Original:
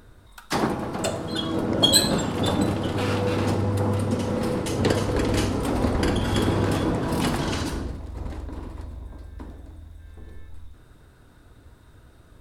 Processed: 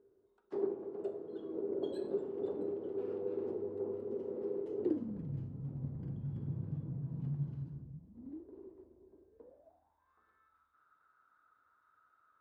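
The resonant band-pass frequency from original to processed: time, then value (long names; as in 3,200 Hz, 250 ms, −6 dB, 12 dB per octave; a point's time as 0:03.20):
resonant band-pass, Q 13
0:04.81 400 Hz
0:05.30 140 Hz
0:07.92 140 Hz
0:08.47 380 Hz
0:09.24 380 Hz
0:10.23 1,300 Hz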